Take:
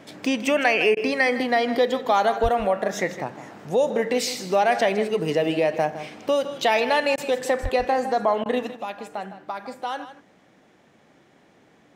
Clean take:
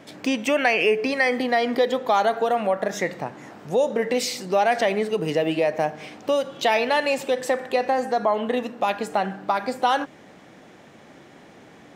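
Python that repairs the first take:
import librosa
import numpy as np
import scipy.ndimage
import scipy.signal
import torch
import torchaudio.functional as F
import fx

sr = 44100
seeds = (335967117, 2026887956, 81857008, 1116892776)

y = fx.fix_deplosive(x, sr, at_s=(2.42, 7.62))
y = fx.fix_interpolate(y, sr, at_s=(0.95, 7.16, 8.44), length_ms=16.0)
y = fx.fix_echo_inverse(y, sr, delay_ms=159, level_db=-13.0)
y = fx.fix_level(y, sr, at_s=8.76, step_db=9.0)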